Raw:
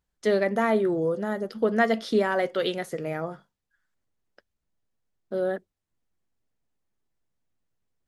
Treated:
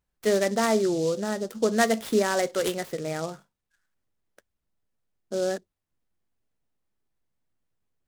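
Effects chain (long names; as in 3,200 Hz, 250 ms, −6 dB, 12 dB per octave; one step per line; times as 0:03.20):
short delay modulated by noise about 5,200 Hz, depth 0.046 ms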